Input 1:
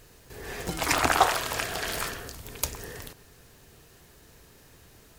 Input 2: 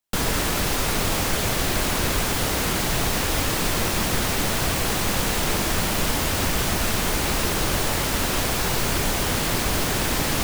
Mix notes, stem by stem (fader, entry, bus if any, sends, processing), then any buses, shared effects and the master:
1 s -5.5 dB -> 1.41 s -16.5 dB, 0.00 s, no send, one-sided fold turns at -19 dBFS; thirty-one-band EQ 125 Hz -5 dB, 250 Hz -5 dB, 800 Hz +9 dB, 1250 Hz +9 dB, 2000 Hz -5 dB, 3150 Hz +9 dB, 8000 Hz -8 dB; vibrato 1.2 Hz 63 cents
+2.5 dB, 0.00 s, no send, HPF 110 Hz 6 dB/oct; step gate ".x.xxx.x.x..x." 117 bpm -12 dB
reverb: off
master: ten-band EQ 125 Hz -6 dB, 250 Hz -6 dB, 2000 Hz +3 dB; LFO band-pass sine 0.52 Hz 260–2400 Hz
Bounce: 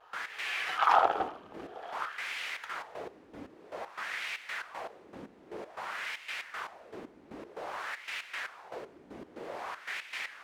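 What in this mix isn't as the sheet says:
stem 1 -5.5 dB -> +4.5 dB; stem 2 +2.5 dB -> -5.5 dB

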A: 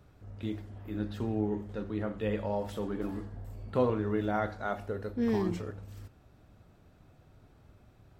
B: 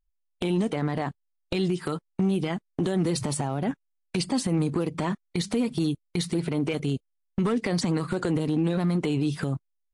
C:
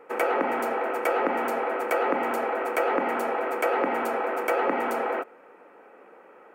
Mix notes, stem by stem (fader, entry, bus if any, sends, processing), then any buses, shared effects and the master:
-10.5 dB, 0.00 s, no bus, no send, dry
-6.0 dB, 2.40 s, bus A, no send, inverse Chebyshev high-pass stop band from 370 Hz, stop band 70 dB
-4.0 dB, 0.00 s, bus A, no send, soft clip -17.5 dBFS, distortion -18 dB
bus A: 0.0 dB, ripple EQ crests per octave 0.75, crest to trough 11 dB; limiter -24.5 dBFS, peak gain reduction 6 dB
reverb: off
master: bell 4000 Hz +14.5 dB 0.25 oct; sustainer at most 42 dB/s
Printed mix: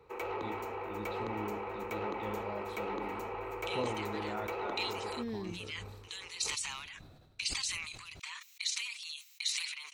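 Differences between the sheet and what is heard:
stem B: entry 2.40 s -> 3.25 s; stem C -4.0 dB -> -13.5 dB

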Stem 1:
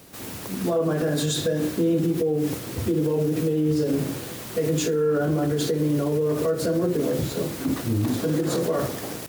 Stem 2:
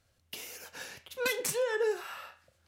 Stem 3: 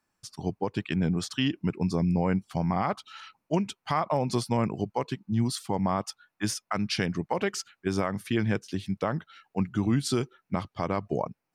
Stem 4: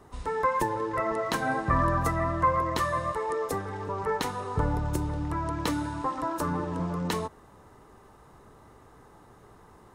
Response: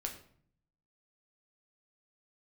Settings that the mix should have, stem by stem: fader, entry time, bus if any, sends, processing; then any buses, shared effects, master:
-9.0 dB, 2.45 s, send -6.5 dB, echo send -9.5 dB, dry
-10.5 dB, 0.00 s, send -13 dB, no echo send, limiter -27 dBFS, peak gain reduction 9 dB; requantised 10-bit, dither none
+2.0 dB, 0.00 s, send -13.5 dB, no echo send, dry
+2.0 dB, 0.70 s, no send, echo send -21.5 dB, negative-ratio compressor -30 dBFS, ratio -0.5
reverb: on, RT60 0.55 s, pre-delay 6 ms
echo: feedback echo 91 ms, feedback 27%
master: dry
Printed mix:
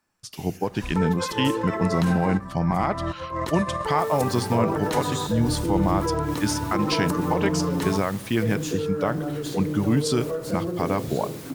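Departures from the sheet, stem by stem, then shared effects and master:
stem 1: entry 2.45 s -> 3.85 s; stem 2 -10.5 dB -> -4.0 dB

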